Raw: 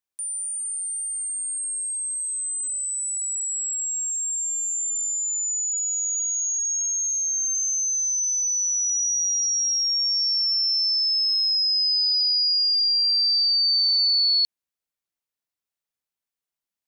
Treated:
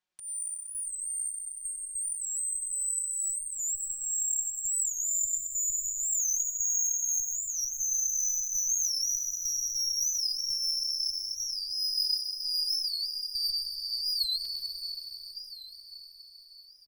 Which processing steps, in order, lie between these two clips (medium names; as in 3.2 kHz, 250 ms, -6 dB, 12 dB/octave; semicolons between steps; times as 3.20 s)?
low-pass 5.1 kHz 12 dB/octave; hum notches 60/120/180/240/300/360/420/480/540 Hz; comb 5.5 ms, depth 74%; compressor with a negative ratio -27 dBFS, ratio -0.5; trance gate "xxxx.xxxx..x." 100 bpm; valve stage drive 28 dB, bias 0.3; echo that smears into a reverb 521 ms, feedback 58%, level -7.5 dB; plate-style reverb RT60 2.4 s, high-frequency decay 0.55×, pre-delay 80 ms, DRR 0 dB; warped record 45 rpm, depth 160 cents